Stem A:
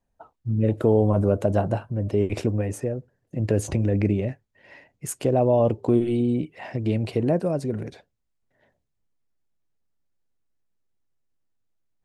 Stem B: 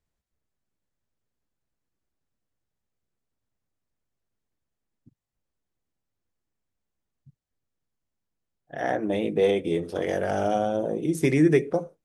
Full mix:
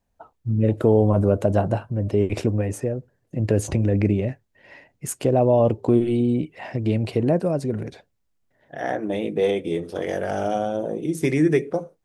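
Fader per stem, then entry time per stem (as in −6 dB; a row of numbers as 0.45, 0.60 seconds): +2.0, +0.5 decibels; 0.00, 0.00 seconds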